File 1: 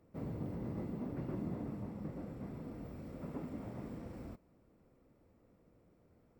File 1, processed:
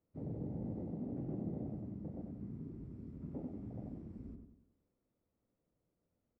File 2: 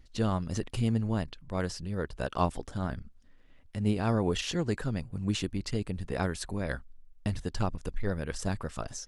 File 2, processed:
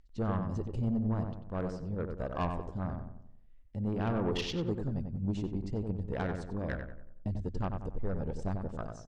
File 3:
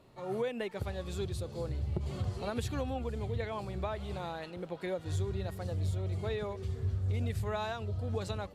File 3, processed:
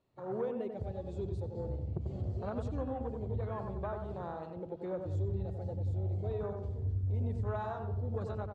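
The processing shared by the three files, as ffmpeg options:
ffmpeg -i in.wav -filter_complex "[0:a]afwtdn=0.0126,lowpass=frequency=8300:width=0.5412,lowpass=frequency=8300:width=1.3066,asoftclip=type=tanh:threshold=-24dB,asplit=2[link_01][link_02];[link_02]adelay=93,lowpass=frequency=1800:poles=1,volume=-5dB,asplit=2[link_03][link_04];[link_04]adelay=93,lowpass=frequency=1800:poles=1,volume=0.45,asplit=2[link_05][link_06];[link_06]adelay=93,lowpass=frequency=1800:poles=1,volume=0.45,asplit=2[link_07][link_08];[link_08]adelay=93,lowpass=frequency=1800:poles=1,volume=0.45,asplit=2[link_09][link_10];[link_10]adelay=93,lowpass=frequency=1800:poles=1,volume=0.45,asplit=2[link_11][link_12];[link_12]adelay=93,lowpass=frequency=1800:poles=1,volume=0.45[link_13];[link_03][link_05][link_07][link_09][link_11][link_13]amix=inputs=6:normalize=0[link_14];[link_01][link_14]amix=inputs=2:normalize=0,volume=-1.5dB" out.wav

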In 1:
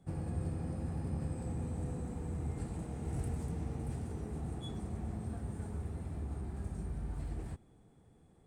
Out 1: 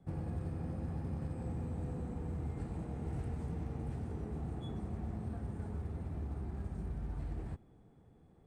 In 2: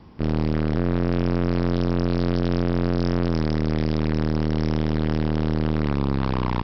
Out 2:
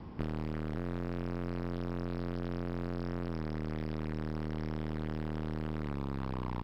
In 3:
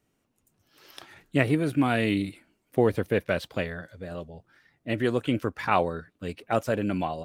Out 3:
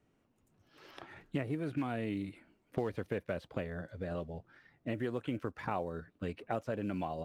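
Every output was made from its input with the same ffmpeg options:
ffmpeg -i in.wav -filter_complex "[0:a]acrusher=bits=8:mode=log:mix=0:aa=0.000001,acrossover=split=940|3000|6300[link_01][link_02][link_03][link_04];[link_01]acompressor=threshold=-36dB:ratio=4[link_05];[link_02]acompressor=threshold=-48dB:ratio=4[link_06];[link_03]acompressor=threshold=-59dB:ratio=4[link_07];[link_04]acompressor=threshold=-58dB:ratio=4[link_08];[link_05][link_06][link_07][link_08]amix=inputs=4:normalize=0,aemphasis=mode=reproduction:type=75kf,volume=1dB" out.wav

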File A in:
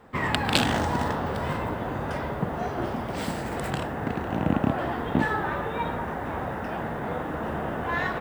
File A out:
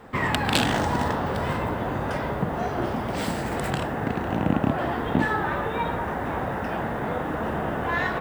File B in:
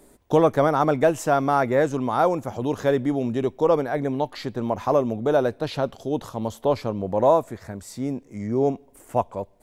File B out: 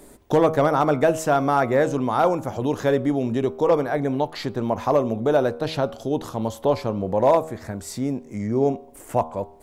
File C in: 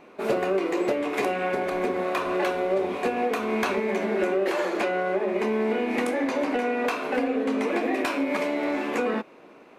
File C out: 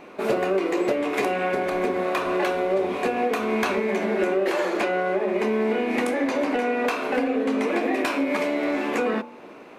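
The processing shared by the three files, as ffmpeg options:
ffmpeg -i in.wav -filter_complex "[0:a]bandreject=frequency=79.44:width_type=h:width=4,bandreject=frequency=158.88:width_type=h:width=4,bandreject=frequency=238.32:width_type=h:width=4,bandreject=frequency=317.76:width_type=h:width=4,bandreject=frequency=397.2:width_type=h:width=4,bandreject=frequency=476.64:width_type=h:width=4,bandreject=frequency=556.08:width_type=h:width=4,bandreject=frequency=635.52:width_type=h:width=4,bandreject=frequency=714.96:width_type=h:width=4,bandreject=frequency=794.4:width_type=h:width=4,bandreject=frequency=873.84:width_type=h:width=4,bandreject=frequency=953.28:width_type=h:width=4,bandreject=frequency=1032.72:width_type=h:width=4,bandreject=frequency=1112.16:width_type=h:width=4,bandreject=frequency=1191.6:width_type=h:width=4,bandreject=frequency=1271.04:width_type=h:width=4,bandreject=frequency=1350.48:width_type=h:width=4,bandreject=frequency=1429.92:width_type=h:width=4,bandreject=frequency=1509.36:width_type=h:width=4,asplit=2[link_01][link_02];[link_02]acompressor=threshold=-36dB:ratio=6,volume=1dB[link_03];[link_01][link_03]amix=inputs=2:normalize=0,volume=9dB,asoftclip=hard,volume=-9dB" out.wav

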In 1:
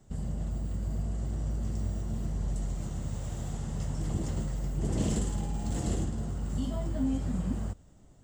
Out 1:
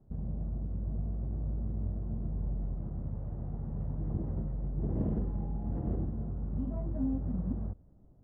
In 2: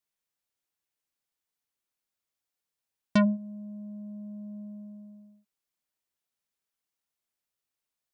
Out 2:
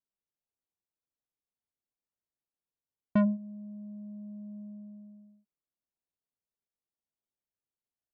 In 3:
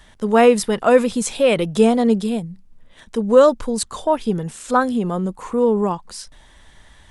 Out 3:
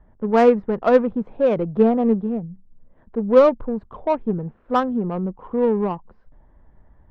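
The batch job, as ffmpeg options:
ffmpeg -i in.wav -af "lowpass=1700,aeval=exprs='0.891*(cos(1*acos(clip(val(0)/0.891,-1,1)))-cos(1*PI/2))+0.0631*(cos(3*acos(clip(val(0)/0.891,-1,1)))-cos(3*PI/2))':channel_layout=same,adynamicsmooth=sensitivity=0.5:basefreq=880" out.wav

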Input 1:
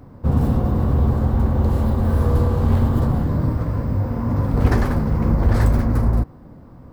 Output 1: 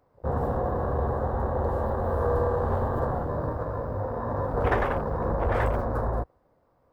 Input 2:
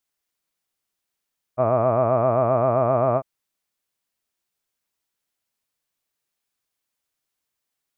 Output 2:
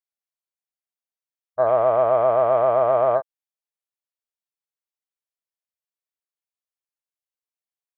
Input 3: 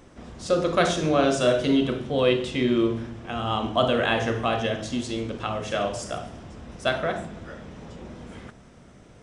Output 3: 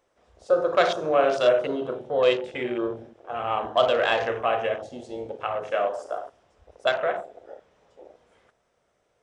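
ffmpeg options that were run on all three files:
ffmpeg -i in.wav -af "lowshelf=frequency=350:width_type=q:width=1.5:gain=-11.5,afwtdn=0.0224" out.wav

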